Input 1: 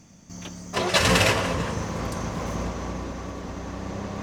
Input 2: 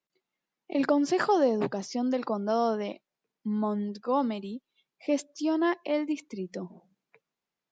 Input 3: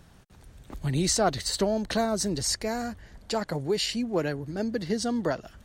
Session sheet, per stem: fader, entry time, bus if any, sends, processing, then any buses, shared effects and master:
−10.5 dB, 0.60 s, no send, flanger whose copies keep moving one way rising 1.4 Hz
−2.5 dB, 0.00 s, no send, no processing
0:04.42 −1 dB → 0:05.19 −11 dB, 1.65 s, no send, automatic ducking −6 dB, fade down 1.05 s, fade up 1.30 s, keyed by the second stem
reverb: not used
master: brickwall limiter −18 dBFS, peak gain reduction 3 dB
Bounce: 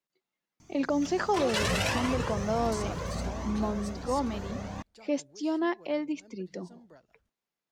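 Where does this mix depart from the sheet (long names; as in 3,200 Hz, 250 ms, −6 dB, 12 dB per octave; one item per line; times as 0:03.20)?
stem 1 −10.5 dB → −1.0 dB
stem 3 −1.0 dB → −11.5 dB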